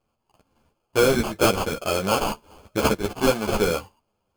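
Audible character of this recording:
aliases and images of a low sample rate 1,900 Hz, jitter 0%
a shimmering, thickened sound

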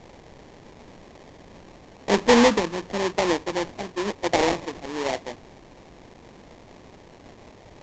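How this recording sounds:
a quantiser's noise floor 8 bits, dither triangular
phaser sweep stages 12, 1 Hz, lowest notch 560–1,800 Hz
aliases and images of a low sample rate 1,400 Hz, jitter 20%
mu-law

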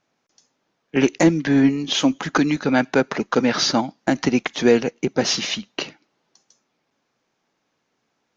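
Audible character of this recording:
background noise floor −73 dBFS
spectral slope −4.5 dB per octave

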